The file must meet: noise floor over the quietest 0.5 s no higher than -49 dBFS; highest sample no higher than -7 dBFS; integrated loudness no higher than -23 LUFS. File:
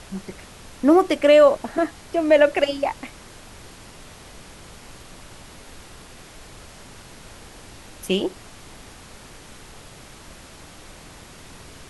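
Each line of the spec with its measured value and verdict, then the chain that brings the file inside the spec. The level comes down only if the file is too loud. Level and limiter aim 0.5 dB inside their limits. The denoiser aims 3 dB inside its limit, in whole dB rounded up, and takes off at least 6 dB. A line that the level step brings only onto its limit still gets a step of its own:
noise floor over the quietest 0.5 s -43 dBFS: fail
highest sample -4.5 dBFS: fail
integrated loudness -19.0 LUFS: fail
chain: noise reduction 6 dB, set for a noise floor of -43 dBFS; trim -4.5 dB

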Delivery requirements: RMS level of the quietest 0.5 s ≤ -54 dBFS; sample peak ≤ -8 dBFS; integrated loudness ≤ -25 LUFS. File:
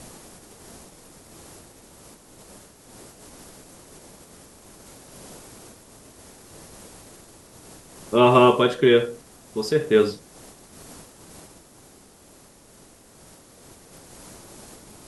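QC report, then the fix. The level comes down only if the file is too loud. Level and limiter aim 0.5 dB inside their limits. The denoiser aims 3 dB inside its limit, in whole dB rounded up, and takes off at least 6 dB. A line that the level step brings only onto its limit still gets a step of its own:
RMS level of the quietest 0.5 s -51 dBFS: fail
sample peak -4.0 dBFS: fail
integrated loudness -19.0 LUFS: fail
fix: trim -6.5 dB

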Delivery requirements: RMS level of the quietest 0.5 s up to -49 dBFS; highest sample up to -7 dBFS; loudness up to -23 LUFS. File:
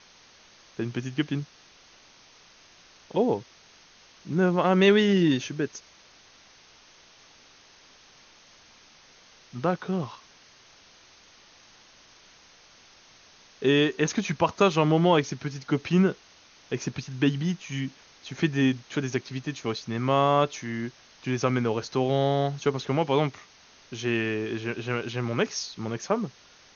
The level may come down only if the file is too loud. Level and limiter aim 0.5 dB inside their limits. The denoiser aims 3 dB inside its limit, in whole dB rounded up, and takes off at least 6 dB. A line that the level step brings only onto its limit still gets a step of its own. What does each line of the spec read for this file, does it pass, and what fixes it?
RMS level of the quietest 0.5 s -55 dBFS: pass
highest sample -8.0 dBFS: pass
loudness -26.5 LUFS: pass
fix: none needed

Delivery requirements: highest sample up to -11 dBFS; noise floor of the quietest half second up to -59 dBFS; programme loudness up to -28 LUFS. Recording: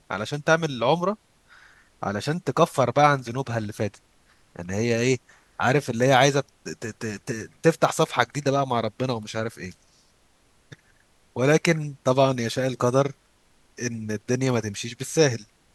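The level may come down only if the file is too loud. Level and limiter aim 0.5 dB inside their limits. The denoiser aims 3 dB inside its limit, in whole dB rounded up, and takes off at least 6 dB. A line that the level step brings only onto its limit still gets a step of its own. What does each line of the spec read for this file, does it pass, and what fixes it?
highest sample -2.0 dBFS: fail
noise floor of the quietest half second -61 dBFS: pass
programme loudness -24.0 LUFS: fail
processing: trim -4.5 dB; peak limiter -11.5 dBFS

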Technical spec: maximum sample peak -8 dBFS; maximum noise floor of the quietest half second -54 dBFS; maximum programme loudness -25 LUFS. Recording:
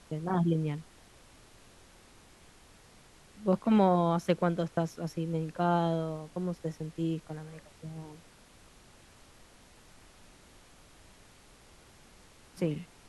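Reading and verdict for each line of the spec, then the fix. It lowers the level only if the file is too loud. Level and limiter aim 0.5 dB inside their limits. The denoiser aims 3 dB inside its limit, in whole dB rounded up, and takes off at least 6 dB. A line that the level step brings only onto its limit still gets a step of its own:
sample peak -12.0 dBFS: pass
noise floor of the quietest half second -57 dBFS: pass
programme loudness -31.0 LUFS: pass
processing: none needed

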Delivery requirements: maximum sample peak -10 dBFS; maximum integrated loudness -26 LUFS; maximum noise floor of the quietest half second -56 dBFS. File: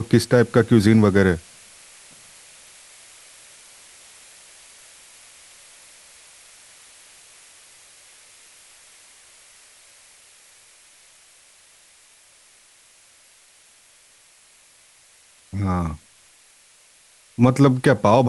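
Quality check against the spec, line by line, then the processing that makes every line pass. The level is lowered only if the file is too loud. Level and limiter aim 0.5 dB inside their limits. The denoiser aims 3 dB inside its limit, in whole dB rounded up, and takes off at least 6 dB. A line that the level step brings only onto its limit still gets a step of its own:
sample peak -3.5 dBFS: fail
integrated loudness -18.0 LUFS: fail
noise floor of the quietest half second -54 dBFS: fail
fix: trim -8.5 dB

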